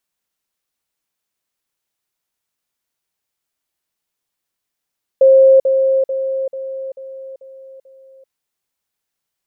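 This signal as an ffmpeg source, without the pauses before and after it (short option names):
-f lavfi -i "aevalsrc='pow(10,(-5-6*floor(t/0.44))/20)*sin(2*PI*533*t)*clip(min(mod(t,0.44),0.39-mod(t,0.44))/0.005,0,1)':d=3.08:s=44100"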